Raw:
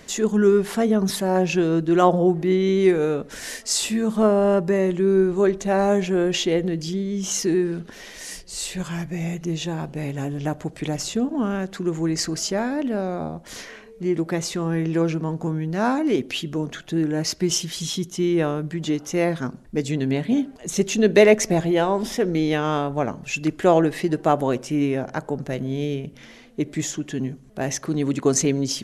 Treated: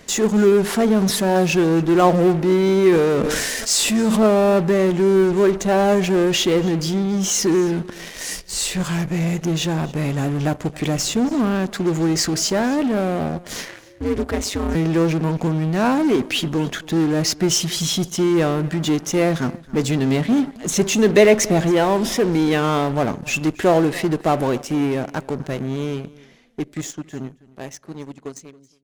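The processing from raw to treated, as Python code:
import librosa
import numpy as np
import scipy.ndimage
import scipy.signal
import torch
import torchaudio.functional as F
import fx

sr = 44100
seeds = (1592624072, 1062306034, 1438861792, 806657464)

p1 = fx.fade_out_tail(x, sr, length_s=6.04)
p2 = fx.fuzz(p1, sr, gain_db=32.0, gate_db=-39.0)
p3 = p1 + (p2 * librosa.db_to_amplitude(-11.0))
p4 = fx.ring_mod(p3, sr, carrier_hz=100.0, at=(13.68, 14.75))
p5 = p4 + 10.0 ** (-21.5 / 20.0) * np.pad(p4, (int(274 * sr / 1000.0), 0))[:len(p4)]
y = fx.sustainer(p5, sr, db_per_s=21.0, at=(2.89, 4.27))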